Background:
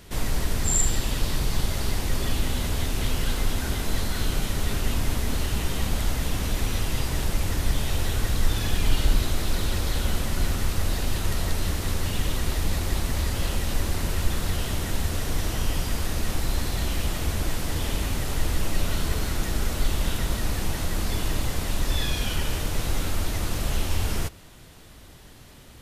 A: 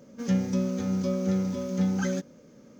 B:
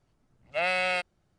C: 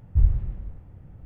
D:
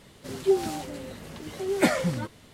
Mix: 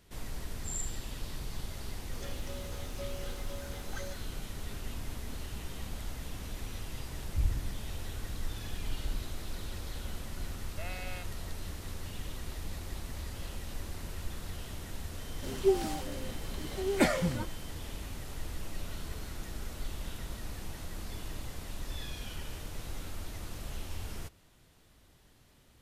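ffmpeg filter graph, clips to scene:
ffmpeg -i bed.wav -i cue0.wav -i cue1.wav -i cue2.wav -i cue3.wav -filter_complex "[0:a]volume=-14.5dB[link_01];[1:a]highpass=frequency=470:width=0.5412,highpass=frequency=470:width=1.3066[link_02];[3:a]lowpass=frequency=310:width_type=q:width=4.9[link_03];[4:a]aeval=exprs='val(0)+0.00251*sin(2*PI*3100*n/s)':channel_layout=same[link_04];[link_02]atrim=end=2.79,asetpts=PTS-STARTPTS,volume=-10dB,afade=type=in:duration=0.004:curve=hsin,afade=type=out:start_time=2.786:duration=0.004:curve=hsin,adelay=1940[link_05];[link_03]atrim=end=1.25,asetpts=PTS-STARTPTS,volume=-12dB,afade=type=in:duration=0.004:curve=hsin,afade=type=out:start_time=1.246:duration=0.004:curve=hsin,adelay=7210[link_06];[2:a]atrim=end=1.38,asetpts=PTS-STARTPTS,volume=-17.5dB,afade=type=in:duration=0.004:curve=hsin,afade=type=out:start_time=1.376:duration=0.004:curve=hsin,adelay=10220[link_07];[link_04]atrim=end=2.53,asetpts=PTS-STARTPTS,volume=-4dB,afade=type=in:duration=0.004:curve=hsin,afade=type=out:start_time=2.526:duration=0.004:curve=hsin,adelay=15180[link_08];[link_01][link_05][link_06][link_07][link_08]amix=inputs=5:normalize=0" out.wav

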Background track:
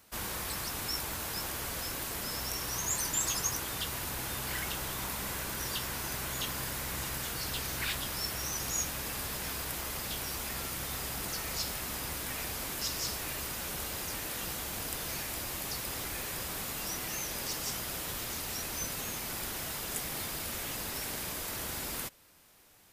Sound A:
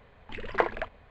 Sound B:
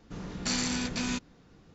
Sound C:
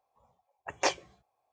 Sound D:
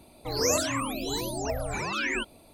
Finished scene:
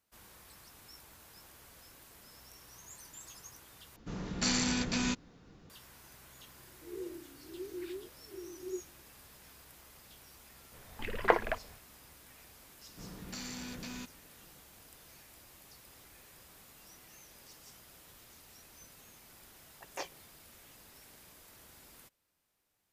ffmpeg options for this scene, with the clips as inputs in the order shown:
ffmpeg -i bed.wav -i cue0.wav -i cue1.wav -i cue2.wav -i cue3.wav -filter_complex "[2:a]asplit=2[link_01][link_02];[0:a]volume=-19.5dB[link_03];[4:a]asuperpass=centerf=360:order=4:qfactor=7.2[link_04];[link_02]acompressor=threshold=-37dB:ratio=4:attack=24:release=31:knee=1:detection=peak[link_05];[link_03]asplit=2[link_06][link_07];[link_06]atrim=end=3.964[link_08];[link_01]atrim=end=1.74,asetpts=PTS-STARTPTS,volume=-0.5dB[link_09];[link_07]atrim=start=5.696[link_10];[link_04]atrim=end=2.53,asetpts=PTS-STARTPTS,volume=-1dB,afade=type=in:duration=0.004:curve=hsin,afade=type=out:start_time=2.526:duration=0.004:curve=hsin,adelay=6560[link_11];[1:a]atrim=end=1.1,asetpts=PTS-STARTPTS,volume=-0.5dB,afade=type=in:duration=0.05,afade=type=out:start_time=1.05:duration=0.05,adelay=10700[link_12];[link_05]atrim=end=1.74,asetpts=PTS-STARTPTS,volume=-8.5dB,afade=type=in:duration=0.004:curve=hsin,afade=type=out:start_time=1.736:duration=0.004:curve=hsin,adelay=12870[link_13];[3:a]atrim=end=1.52,asetpts=PTS-STARTPTS,volume=-13.5dB,afade=type=in:duration=0.004:curve=hsin,afade=type=out:start_time=1.516:duration=0.004:curve=hsin,adelay=19140[link_14];[link_08][link_09]acrossfade=duration=0.004:curve1=hsin:curve2=hsin[link_15];[link_15][link_10]acrossfade=duration=0.004:curve1=hsin:curve2=hsin[link_16];[link_16][link_11][link_12][link_13][link_14]amix=inputs=5:normalize=0" out.wav

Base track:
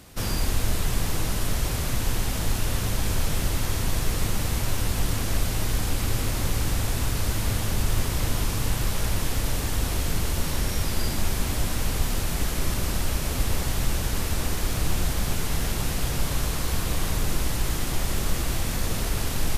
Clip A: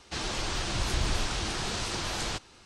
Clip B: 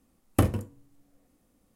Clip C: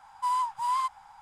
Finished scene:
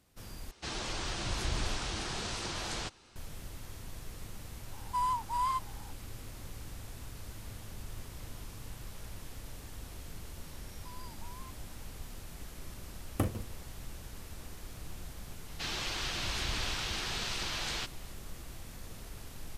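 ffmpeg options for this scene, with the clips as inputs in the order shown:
ffmpeg -i bed.wav -i cue0.wav -i cue1.wav -i cue2.wav -filter_complex "[1:a]asplit=2[link_01][link_02];[3:a]asplit=2[link_03][link_04];[0:a]volume=-20dB[link_05];[link_04]acompressor=threshold=-35dB:ratio=6:attack=3.2:release=140:knee=1:detection=peak[link_06];[link_02]equalizer=frequency=2900:width=0.52:gain=8.5[link_07];[link_05]asplit=2[link_08][link_09];[link_08]atrim=end=0.514[link_10];[link_01]atrim=end=2.65,asetpts=PTS-STARTPTS,volume=-5dB[link_11];[link_09]atrim=start=3.156[link_12];[link_03]atrim=end=1.21,asetpts=PTS-STARTPTS,volume=-4dB,afade=type=in:duration=0.004:curve=hsin,afade=type=out:start_time=1.206:duration=0.004:curve=hsin,adelay=4710[link_13];[link_06]atrim=end=1.21,asetpts=PTS-STARTPTS,volume=-16.5dB,afade=type=in:duration=0.004:curve=hsin,afade=type=out:start_time=1.206:duration=0.004:curve=hsin,adelay=10630[link_14];[2:a]atrim=end=1.75,asetpts=PTS-STARTPTS,volume=-9dB,afade=type=in:duration=0.004:curve=hsin,afade=type=out:start_time=1.746:duration=0.004:curve=hsin,adelay=12810[link_15];[link_07]atrim=end=2.65,asetpts=PTS-STARTPTS,volume=-9dB,afade=type=in:duration=0.004:curve=hsin,afade=type=out:start_time=2.646:duration=0.004:curve=hsin,adelay=15480[link_16];[link_10][link_11]acrossfade=duration=0.004:curve1=hsin:curve2=hsin[link_17];[link_17][link_12]acrossfade=duration=0.004:curve1=hsin:curve2=hsin[link_18];[link_18][link_13][link_14][link_15][link_16]amix=inputs=5:normalize=0" out.wav

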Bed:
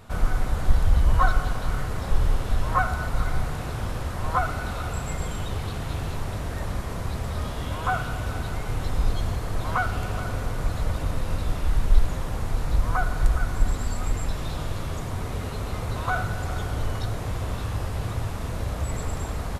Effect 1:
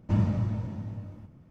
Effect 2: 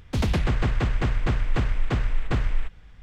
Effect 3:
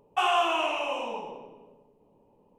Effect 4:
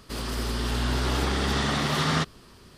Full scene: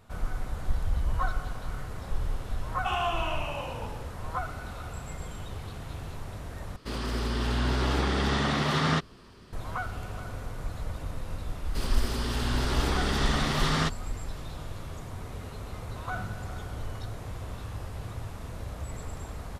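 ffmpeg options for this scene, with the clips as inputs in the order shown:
ffmpeg -i bed.wav -i cue0.wav -i cue1.wav -i cue2.wav -i cue3.wav -filter_complex "[4:a]asplit=2[link_01][link_02];[0:a]volume=-9dB[link_03];[3:a]lowpass=6900[link_04];[link_01]lowpass=frequency=3800:poles=1[link_05];[1:a]tiltshelf=frequency=970:gain=-6.5[link_06];[link_03]asplit=2[link_07][link_08];[link_07]atrim=end=6.764[link_09];[link_05]atrim=end=2.77,asetpts=PTS-STARTPTS,volume=-0.5dB[link_10];[link_08]atrim=start=9.526[link_11];[link_04]atrim=end=2.58,asetpts=PTS-STARTPTS,volume=-5.5dB,afade=type=in:duration=0.004:curve=hsin,afade=type=out:start_time=2.576:duration=0.004:curve=hsin,adelay=2680[link_12];[link_02]atrim=end=2.77,asetpts=PTS-STARTPTS,volume=-2.5dB,afade=type=in:duration=0.004:curve=hsin,afade=type=out:start_time=2.766:duration=0.004:curve=hsin,adelay=11650[link_13];[link_06]atrim=end=1.5,asetpts=PTS-STARTPTS,volume=-12.5dB,afade=type=in:duration=0.004:curve=hsin,afade=type=out:start_time=1.496:duration=0.004:curve=hsin,adelay=16020[link_14];[link_09][link_10]acrossfade=duration=0.004:curve1=hsin:curve2=hsin[link_15];[link_15][link_11]acrossfade=duration=0.004:curve1=hsin:curve2=hsin[link_16];[link_16][link_12][link_13][link_14]amix=inputs=4:normalize=0" out.wav

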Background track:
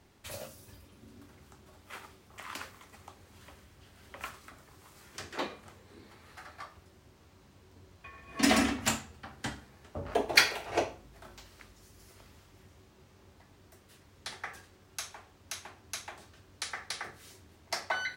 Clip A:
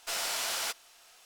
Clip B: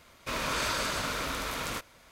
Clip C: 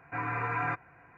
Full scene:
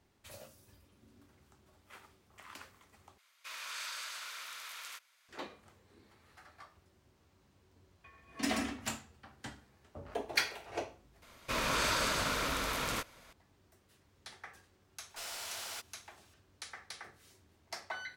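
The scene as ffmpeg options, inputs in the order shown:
ffmpeg -i bed.wav -i cue0.wav -i cue1.wav -filter_complex "[2:a]asplit=2[link_01][link_02];[0:a]volume=-9dB[link_03];[link_01]highpass=1500[link_04];[link_03]asplit=3[link_05][link_06][link_07];[link_05]atrim=end=3.184[link_08];[link_04]atrim=end=2.11,asetpts=PTS-STARTPTS,volume=-9dB[link_09];[link_06]atrim=start=5.286:end=11.224[link_10];[link_02]atrim=end=2.11,asetpts=PTS-STARTPTS,volume=-1dB[link_11];[link_07]atrim=start=13.326[link_12];[1:a]atrim=end=1.25,asetpts=PTS-STARTPTS,volume=-10dB,afade=type=in:duration=0.004:curve=hsin,afade=type=out:start_time=1.246:duration=0.004:curve=hsin,adelay=15090[link_13];[link_08][link_09]acrossfade=duration=0.004:curve1=hsin:curve2=hsin[link_14];[link_14][link_10]acrossfade=duration=0.004:curve1=hsin:curve2=hsin[link_15];[link_15][link_11]acrossfade=duration=0.004:curve1=hsin:curve2=hsin[link_16];[link_16][link_12]acrossfade=duration=0.004:curve1=hsin:curve2=hsin[link_17];[link_17][link_13]amix=inputs=2:normalize=0" out.wav

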